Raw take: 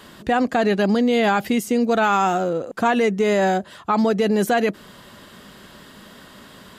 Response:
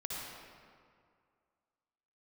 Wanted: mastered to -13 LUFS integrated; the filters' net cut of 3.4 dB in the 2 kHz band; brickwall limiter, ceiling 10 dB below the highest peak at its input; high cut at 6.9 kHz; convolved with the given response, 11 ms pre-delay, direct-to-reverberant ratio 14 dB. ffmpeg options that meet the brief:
-filter_complex "[0:a]lowpass=6900,equalizer=f=2000:t=o:g=-4.5,alimiter=limit=0.0944:level=0:latency=1,asplit=2[s0][s1];[1:a]atrim=start_sample=2205,adelay=11[s2];[s1][s2]afir=irnorm=-1:irlink=0,volume=0.168[s3];[s0][s3]amix=inputs=2:normalize=0,volume=5.62"

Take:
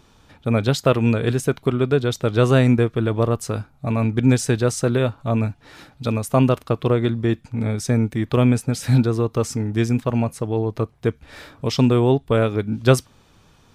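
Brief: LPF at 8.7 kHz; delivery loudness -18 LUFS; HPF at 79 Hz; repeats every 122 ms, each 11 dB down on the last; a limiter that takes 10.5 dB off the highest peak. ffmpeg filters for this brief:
-af "highpass=79,lowpass=8700,alimiter=limit=0.299:level=0:latency=1,aecho=1:1:122|244|366:0.282|0.0789|0.0221,volume=1.78"

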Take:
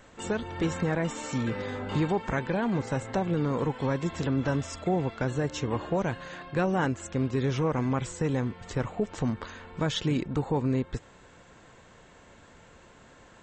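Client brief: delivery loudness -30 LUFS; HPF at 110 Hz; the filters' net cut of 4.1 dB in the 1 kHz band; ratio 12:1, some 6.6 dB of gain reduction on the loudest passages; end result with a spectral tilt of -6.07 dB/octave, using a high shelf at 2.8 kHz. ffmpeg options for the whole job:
-af "highpass=110,equalizer=f=1000:t=o:g=-5,highshelf=f=2800:g=-3.5,acompressor=threshold=0.0316:ratio=12,volume=2.11"

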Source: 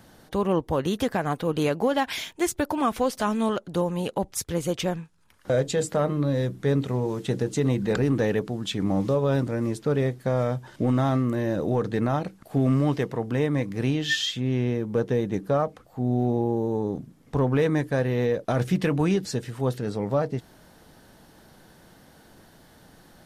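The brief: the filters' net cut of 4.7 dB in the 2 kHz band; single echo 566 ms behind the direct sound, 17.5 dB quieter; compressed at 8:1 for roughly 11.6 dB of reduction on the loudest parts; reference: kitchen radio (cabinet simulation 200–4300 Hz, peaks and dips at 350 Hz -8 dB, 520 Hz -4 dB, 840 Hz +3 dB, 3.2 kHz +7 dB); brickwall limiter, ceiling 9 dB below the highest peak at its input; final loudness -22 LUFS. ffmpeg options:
-af "equalizer=f=2000:t=o:g=-6.5,acompressor=threshold=0.0282:ratio=8,alimiter=level_in=1.5:limit=0.0631:level=0:latency=1,volume=0.668,highpass=200,equalizer=f=350:t=q:w=4:g=-8,equalizer=f=520:t=q:w=4:g=-4,equalizer=f=840:t=q:w=4:g=3,equalizer=f=3200:t=q:w=4:g=7,lowpass=f=4300:w=0.5412,lowpass=f=4300:w=1.3066,aecho=1:1:566:0.133,volume=7.94"

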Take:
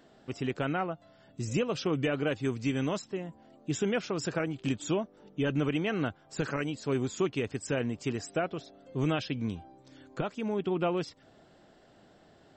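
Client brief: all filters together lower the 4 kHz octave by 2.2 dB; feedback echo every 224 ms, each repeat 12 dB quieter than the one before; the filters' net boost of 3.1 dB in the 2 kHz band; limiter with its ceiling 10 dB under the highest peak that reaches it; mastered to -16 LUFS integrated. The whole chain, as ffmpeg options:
-af "equalizer=f=2000:t=o:g=6,equalizer=f=4000:t=o:g=-6.5,alimiter=level_in=1.41:limit=0.0631:level=0:latency=1,volume=0.708,aecho=1:1:224|448|672:0.251|0.0628|0.0157,volume=11.9"

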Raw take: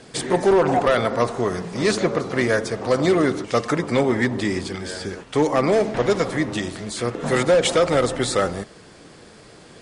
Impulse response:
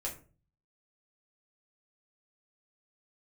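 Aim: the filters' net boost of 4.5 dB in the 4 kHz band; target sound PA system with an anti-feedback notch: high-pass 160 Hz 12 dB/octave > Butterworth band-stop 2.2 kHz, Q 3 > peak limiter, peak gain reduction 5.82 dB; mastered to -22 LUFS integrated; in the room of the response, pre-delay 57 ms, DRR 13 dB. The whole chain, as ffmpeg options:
-filter_complex "[0:a]equalizer=f=4000:t=o:g=5.5,asplit=2[s0][s1];[1:a]atrim=start_sample=2205,adelay=57[s2];[s1][s2]afir=irnorm=-1:irlink=0,volume=0.188[s3];[s0][s3]amix=inputs=2:normalize=0,highpass=160,asuperstop=centerf=2200:order=8:qfactor=3,volume=1.12,alimiter=limit=0.282:level=0:latency=1"

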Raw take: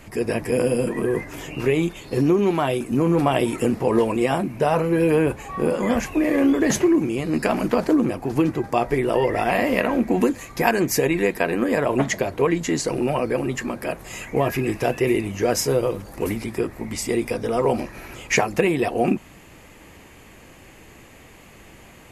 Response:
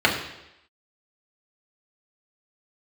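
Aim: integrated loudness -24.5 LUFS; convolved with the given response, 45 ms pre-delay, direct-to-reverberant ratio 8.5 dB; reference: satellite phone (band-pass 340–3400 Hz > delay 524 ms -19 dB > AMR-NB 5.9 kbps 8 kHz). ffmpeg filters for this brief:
-filter_complex "[0:a]asplit=2[s0][s1];[1:a]atrim=start_sample=2205,adelay=45[s2];[s1][s2]afir=irnorm=-1:irlink=0,volume=0.0398[s3];[s0][s3]amix=inputs=2:normalize=0,highpass=340,lowpass=3400,aecho=1:1:524:0.112,volume=1.06" -ar 8000 -c:a libopencore_amrnb -b:a 5900

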